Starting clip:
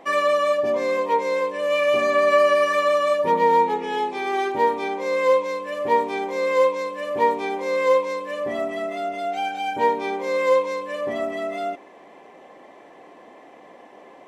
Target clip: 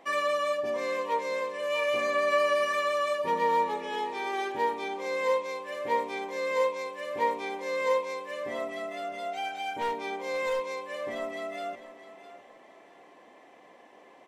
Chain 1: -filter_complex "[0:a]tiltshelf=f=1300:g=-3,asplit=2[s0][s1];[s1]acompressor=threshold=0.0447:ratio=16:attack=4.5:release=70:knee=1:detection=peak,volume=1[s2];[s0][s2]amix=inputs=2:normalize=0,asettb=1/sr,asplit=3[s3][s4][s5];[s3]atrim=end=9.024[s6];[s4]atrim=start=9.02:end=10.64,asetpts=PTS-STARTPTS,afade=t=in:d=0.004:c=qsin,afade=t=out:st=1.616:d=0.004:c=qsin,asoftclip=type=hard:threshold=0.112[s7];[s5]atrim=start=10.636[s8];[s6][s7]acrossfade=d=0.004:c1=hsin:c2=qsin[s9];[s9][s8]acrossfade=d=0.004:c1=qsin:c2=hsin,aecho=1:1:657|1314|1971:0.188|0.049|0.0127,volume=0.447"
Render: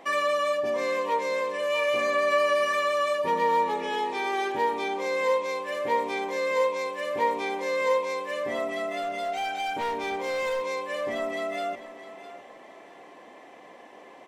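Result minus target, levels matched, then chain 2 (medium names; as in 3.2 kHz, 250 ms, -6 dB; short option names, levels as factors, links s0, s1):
compression: peak gain reduction +14 dB
-filter_complex "[0:a]tiltshelf=f=1300:g=-3,asettb=1/sr,asplit=3[s0][s1][s2];[s0]atrim=end=9.024[s3];[s1]atrim=start=9.02:end=10.64,asetpts=PTS-STARTPTS,afade=t=in:d=0.004:c=qsin,afade=t=out:st=1.616:d=0.004:c=qsin,asoftclip=type=hard:threshold=0.112[s4];[s2]atrim=start=10.636[s5];[s3][s4]acrossfade=d=0.004:c1=hsin:c2=qsin[s6];[s6][s5]acrossfade=d=0.004:c1=qsin:c2=hsin,aecho=1:1:657|1314|1971:0.188|0.049|0.0127,volume=0.447"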